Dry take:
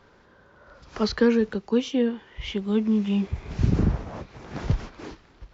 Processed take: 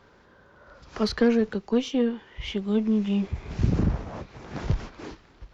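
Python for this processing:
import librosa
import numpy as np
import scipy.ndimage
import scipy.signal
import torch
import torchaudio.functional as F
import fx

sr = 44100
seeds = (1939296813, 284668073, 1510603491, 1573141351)

y = fx.diode_clip(x, sr, knee_db=-16.0)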